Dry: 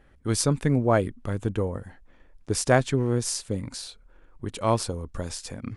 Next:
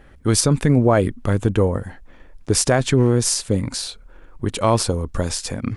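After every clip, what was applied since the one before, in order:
boost into a limiter +15 dB
level −5 dB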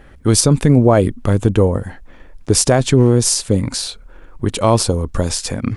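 dynamic equaliser 1,700 Hz, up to −5 dB, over −35 dBFS, Q 1.1
level +4.5 dB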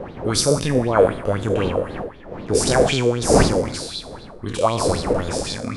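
peak hold with a decay on every bin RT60 0.82 s
wind on the microphone 390 Hz −16 dBFS
auto-filter bell 3.9 Hz 460–4,100 Hz +16 dB
level −12 dB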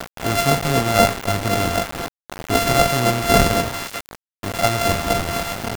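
samples sorted by size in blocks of 64 samples
tube saturation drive 7 dB, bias 0.6
bit reduction 5 bits
level +3 dB

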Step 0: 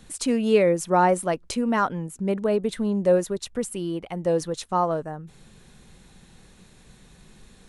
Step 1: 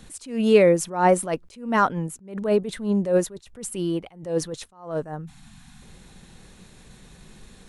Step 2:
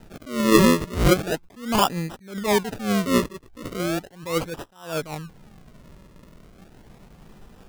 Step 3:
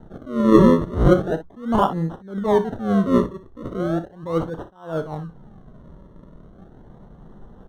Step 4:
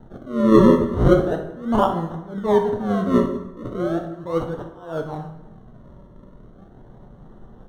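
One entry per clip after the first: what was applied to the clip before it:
time-frequency box erased 0:05.25–0:05.82, 320–660 Hz; level that may rise only so fast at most 130 dB per second; level +3.5 dB
dynamic equaliser 4,800 Hz, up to +5 dB, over −45 dBFS, Q 1.4; sample-and-hold swept by an LFO 39×, swing 100% 0.37 Hz
moving average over 18 samples; on a send: ambience of single reflections 31 ms −12.5 dB, 60 ms −13 dB; on the sum: level +3.5 dB
dense smooth reverb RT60 0.95 s, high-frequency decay 0.7×, DRR 5 dB; level −1 dB

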